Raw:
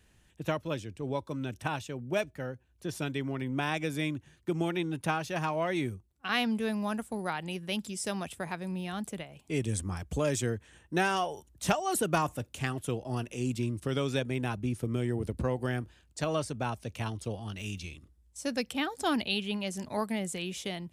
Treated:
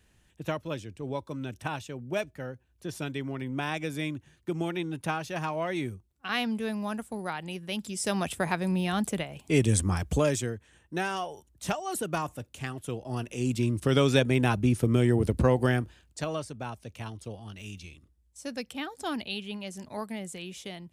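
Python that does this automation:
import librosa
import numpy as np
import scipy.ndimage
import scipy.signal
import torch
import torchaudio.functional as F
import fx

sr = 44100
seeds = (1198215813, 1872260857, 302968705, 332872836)

y = fx.gain(x, sr, db=fx.line((7.74, -0.5), (8.3, 8.0), (10.09, 8.0), (10.54, -3.0), (12.78, -3.0), (13.98, 8.0), (15.64, 8.0), (16.46, -4.0)))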